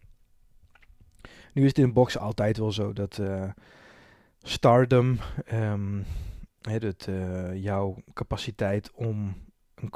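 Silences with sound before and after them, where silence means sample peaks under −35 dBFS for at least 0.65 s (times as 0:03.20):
0:03.51–0:04.46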